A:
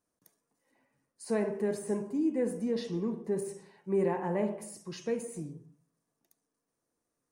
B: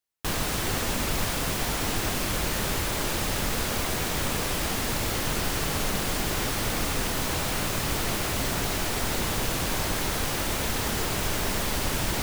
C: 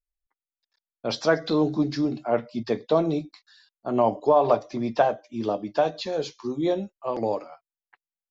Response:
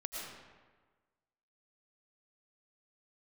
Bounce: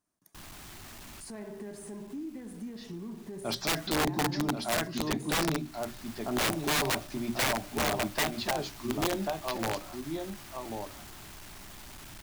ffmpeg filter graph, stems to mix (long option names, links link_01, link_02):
-filter_complex "[0:a]acompressor=threshold=-35dB:ratio=6,alimiter=level_in=8.5dB:limit=-24dB:level=0:latency=1,volume=-8.5dB,volume=0.5dB,asplit=2[link_01][link_02];[1:a]asoftclip=type=hard:threshold=-31.5dB,adelay=100,volume=-13.5dB[link_03];[2:a]equalizer=frequency=110:width=0.54:gain=2,bandreject=frequency=60:width_type=h:width=6,bandreject=frequency=120:width_type=h:width=6,bandreject=frequency=180:width_type=h:width=6,bandreject=frequency=240:width_type=h:width=6,bandreject=frequency=300:width_type=h:width=6,bandreject=frequency=360:width_type=h:width=6,adelay=2400,volume=-3.5dB,asplit=2[link_04][link_05];[link_05]volume=-6dB[link_06];[link_02]apad=whole_len=543687[link_07];[link_03][link_07]sidechaincompress=threshold=-51dB:ratio=6:attack=7.2:release=351[link_08];[link_06]aecho=0:1:1089:1[link_09];[link_01][link_08][link_04][link_09]amix=inputs=4:normalize=0,equalizer=frequency=490:width=5.2:gain=-14.5,aeval=exprs='(mod(12.6*val(0)+1,2)-1)/12.6':channel_layout=same"